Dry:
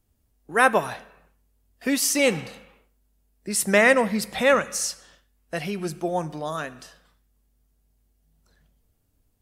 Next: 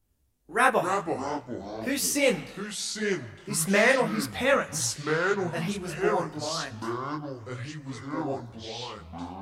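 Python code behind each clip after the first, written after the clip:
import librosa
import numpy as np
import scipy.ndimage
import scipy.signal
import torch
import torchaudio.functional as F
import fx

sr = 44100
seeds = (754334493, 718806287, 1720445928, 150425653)

y = fx.echo_pitch(x, sr, ms=82, semitones=-5, count=3, db_per_echo=-6.0)
y = fx.detune_double(y, sr, cents=57)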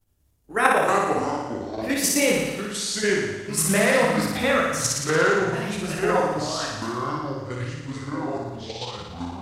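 y = fx.level_steps(x, sr, step_db=9)
y = fx.room_flutter(y, sr, wall_m=9.9, rt60_s=1.1)
y = F.gain(torch.from_numpy(y), 6.0).numpy()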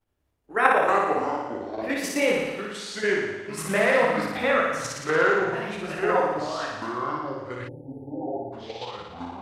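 y = fx.spec_erase(x, sr, start_s=7.68, length_s=0.85, low_hz=920.0, high_hz=10000.0)
y = fx.bass_treble(y, sr, bass_db=-10, treble_db=-14)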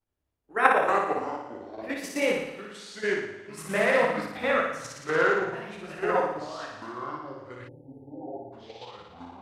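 y = fx.upward_expand(x, sr, threshold_db=-31.0, expansion=1.5)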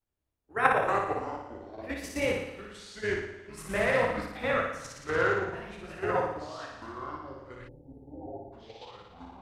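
y = fx.octave_divider(x, sr, octaves=2, level_db=-5.0)
y = F.gain(torch.from_numpy(y), -3.5).numpy()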